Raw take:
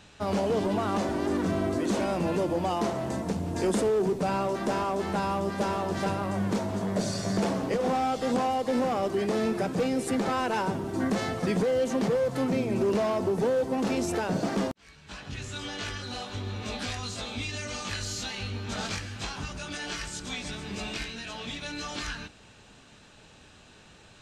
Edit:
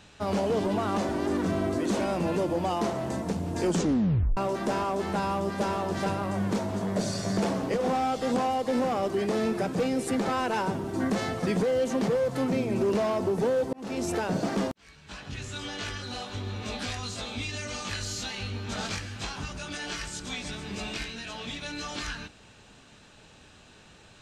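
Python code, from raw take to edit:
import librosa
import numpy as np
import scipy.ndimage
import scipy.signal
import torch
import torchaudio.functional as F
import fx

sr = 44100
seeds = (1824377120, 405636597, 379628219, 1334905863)

y = fx.edit(x, sr, fx.tape_stop(start_s=3.66, length_s=0.71),
    fx.fade_in_span(start_s=13.73, length_s=0.35), tone=tone)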